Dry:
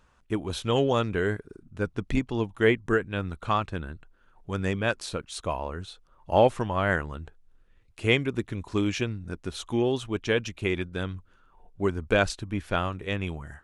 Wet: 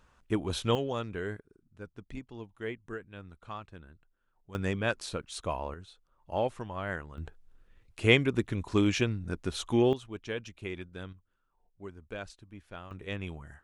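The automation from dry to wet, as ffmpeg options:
ffmpeg -i in.wav -af "asetnsamples=nb_out_samples=441:pad=0,asendcmd='0.75 volume volume -9.5dB;1.4 volume volume -16dB;4.55 volume volume -3.5dB;5.74 volume volume -10.5dB;7.18 volume volume 0.5dB;9.93 volume volume -11dB;11.13 volume volume -18dB;12.91 volume volume -7dB',volume=-1dB" out.wav

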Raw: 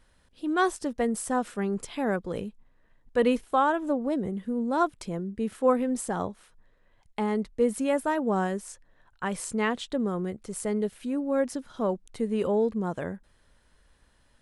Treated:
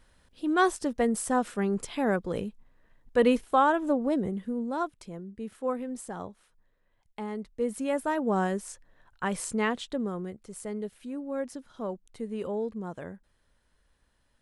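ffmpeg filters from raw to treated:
ffmpeg -i in.wav -af "volume=9.5dB,afade=type=out:start_time=4.18:duration=0.73:silence=0.354813,afade=type=in:start_time=7.41:duration=1.11:silence=0.375837,afade=type=out:start_time=9.41:duration=1.01:silence=0.421697" out.wav

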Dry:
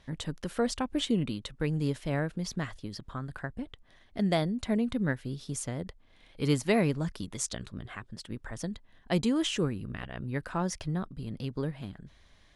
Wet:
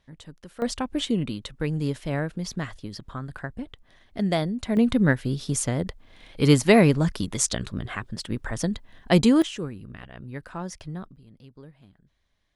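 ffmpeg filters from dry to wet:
ffmpeg -i in.wav -af "asetnsamples=nb_out_samples=441:pad=0,asendcmd='0.62 volume volume 3dB;4.77 volume volume 9.5dB;9.42 volume volume -3dB;11.16 volume volume -13.5dB',volume=-8.5dB" out.wav

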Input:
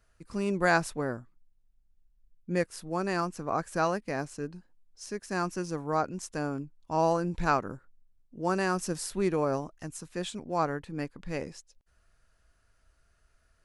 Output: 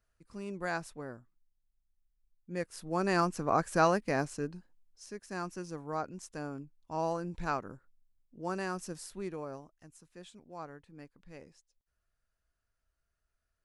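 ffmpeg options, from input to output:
ffmpeg -i in.wav -af "volume=2dB,afade=type=in:start_time=2.5:duration=0.7:silence=0.223872,afade=type=out:start_time=4.17:duration=0.87:silence=0.334965,afade=type=out:start_time=8.63:duration=1.07:silence=0.375837" out.wav

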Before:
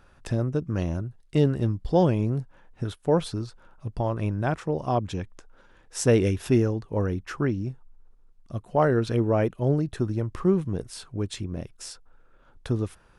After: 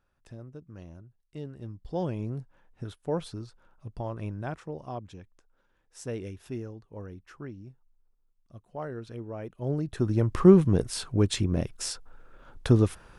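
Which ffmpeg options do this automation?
ffmpeg -i in.wav -af "volume=13.5dB,afade=type=in:start_time=1.52:duration=0.78:silence=0.298538,afade=type=out:start_time=4.3:duration=0.91:silence=0.421697,afade=type=in:start_time=9.43:duration=0.5:silence=0.237137,afade=type=in:start_time=9.93:duration=0.48:silence=0.354813" out.wav

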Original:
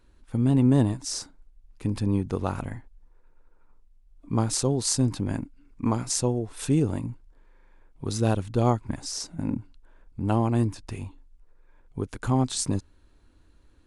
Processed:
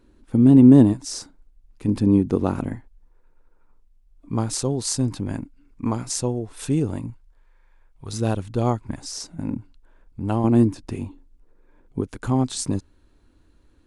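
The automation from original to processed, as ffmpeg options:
ffmpeg -i in.wav -af "asetnsamples=nb_out_samples=441:pad=0,asendcmd='0.93 equalizer g 3.5;1.88 equalizer g 11;2.75 equalizer g 1;7.1 equalizer g -10.5;8.13 equalizer g 1;10.44 equalizer g 10.5;12.01 equalizer g 3.5',equalizer=frequency=280:width_type=o:width=1.8:gain=11" out.wav

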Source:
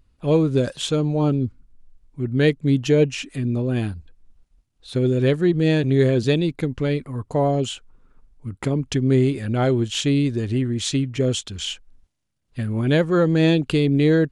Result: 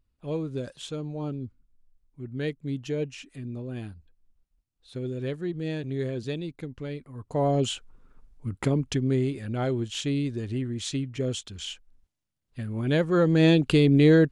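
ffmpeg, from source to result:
ffmpeg -i in.wav -af "volume=6.5dB,afade=type=in:start_time=7.14:duration=0.56:silence=0.251189,afade=type=out:start_time=8.58:duration=0.59:silence=0.446684,afade=type=in:start_time=12.72:duration=1.01:silence=0.421697" out.wav

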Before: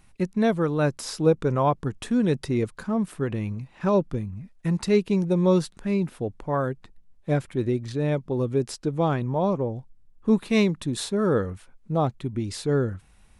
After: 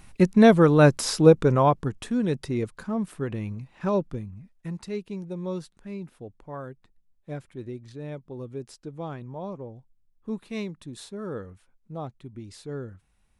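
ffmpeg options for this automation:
ffmpeg -i in.wav -af "volume=7dB,afade=type=out:start_time=0.91:duration=1.19:silence=0.316228,afade=type=out:start_time=3.89:duration=1:silence=0.354813" out.wav

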